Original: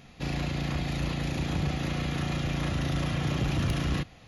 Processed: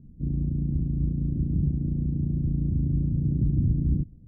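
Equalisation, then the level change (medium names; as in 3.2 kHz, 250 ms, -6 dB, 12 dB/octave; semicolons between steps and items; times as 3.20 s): inverse Chebyshev low-pass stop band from 1.3 kHz, stop band 70 dB; bass shelf 60 Hz +6.5 dB; +3.5 dB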